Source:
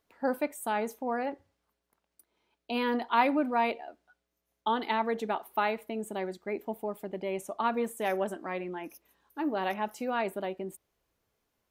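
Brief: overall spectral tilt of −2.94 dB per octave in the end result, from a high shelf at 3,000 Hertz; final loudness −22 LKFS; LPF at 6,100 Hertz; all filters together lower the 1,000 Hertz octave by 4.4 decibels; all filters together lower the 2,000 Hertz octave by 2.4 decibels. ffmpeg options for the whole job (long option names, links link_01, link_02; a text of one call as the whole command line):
ffmpeg -i in.wav -af "lowpass=6100,equalizer=frequency=1000:width_type=o:gain=-5.5,equalizer=frequency=2000:width_type=o:gain=-3.5,highshelf=frequency=3000:gain=6,volume=12dB" out.wav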